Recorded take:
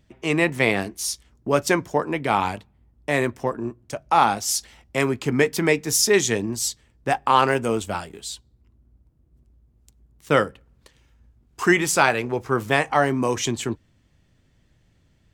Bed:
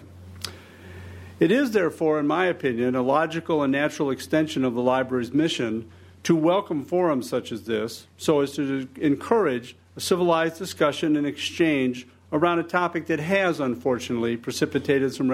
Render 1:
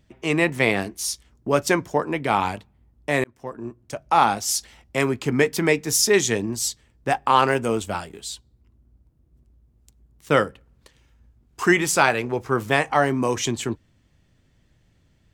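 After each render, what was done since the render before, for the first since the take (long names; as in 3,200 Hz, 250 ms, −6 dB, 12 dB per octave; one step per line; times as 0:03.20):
0:03.24–0:04.24: fade in equal-power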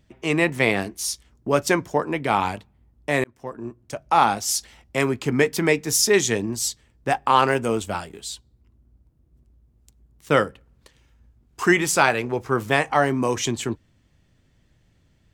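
no processing that can be heard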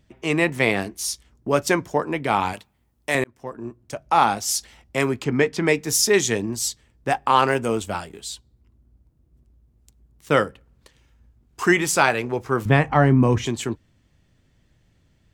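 0:02.53–0:03.15: spectral tilt +2.5 dB per octave
0:05.24–0:05.68: high-frequency loss of the air 80 metres
0:12.65–0:13.46: bass and treble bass +14 dB, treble −12 dB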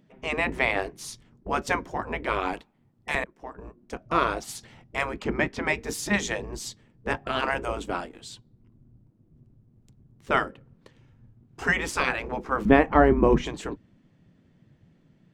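RIAA equalisation playback
gate on every frequency bin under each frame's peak −10 dB weak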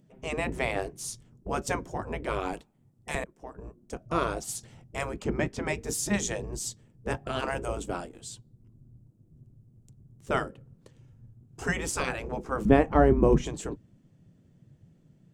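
graphic EQ with 10 bands 125 Hz +4 dB, 250 Hz −3 dB, 1,000 Hz −5 dB, 2,000 Hz −7 dB, 4,000 Hz −5 dB, 8,000 Hz +6 dB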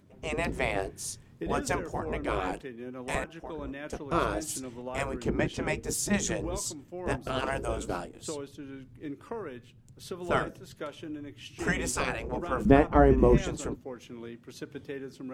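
mix in bed −17.5 dB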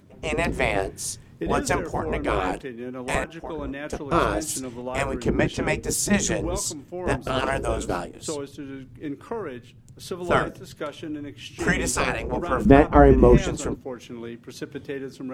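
level +6.5 dB
brickwall limiter −1 dBFS, peak gain reduction 1 dB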